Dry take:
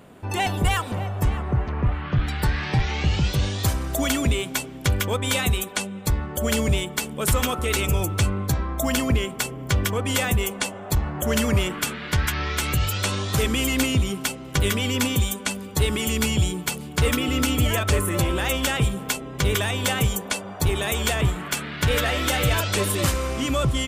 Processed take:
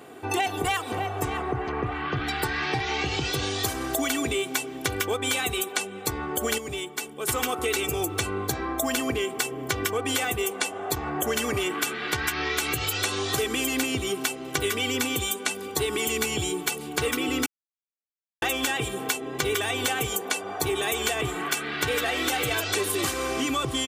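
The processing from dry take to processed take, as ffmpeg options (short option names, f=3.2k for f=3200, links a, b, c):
-filter_complex "[0:a]asplit=5[a][b][c][d][e];[a]atrim=end=6.582[f];[b]atrim=start=6.578:end=7.292,asetpts=PTS-STARTPTS,volume=-9.5dB[g];[c]atrim=start=7.288:end=17.46,asetpts=PTS-STARTPTS,afade=t=out:st=10.168:d=0.004:c=hsin[h];[d]atrim=start=17.46:end=18.42,asetpts=PTS-STARTPTS,volume=0[i];[e]atrim=start=18.42,asetpts=PTS-STARTPTS,afade=t=in:d=0.004:c=hsin[j];[f][g]acrossfade=d=0.004:c1=hsin:c2=hsin[k];[h][i][j]concat=n=3:v=0:a=1[l];[k][l]acrossfade=d=0.004:c1=hsin:c2=hsin,highpass=190,aecho=1:1:2.6:0.67,acompressor=threshold=-27dB:ratio=4,volume=3dB"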